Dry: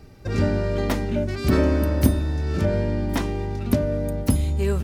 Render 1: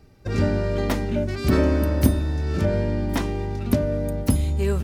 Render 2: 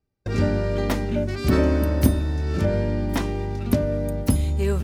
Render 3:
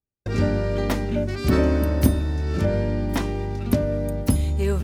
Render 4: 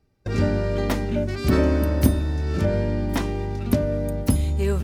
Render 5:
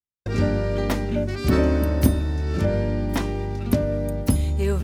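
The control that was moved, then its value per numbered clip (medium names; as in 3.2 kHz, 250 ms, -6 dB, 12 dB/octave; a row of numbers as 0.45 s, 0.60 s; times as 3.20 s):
gate, range: -6 dB, -32 dB, -46 dB, -20 dB, -59 dB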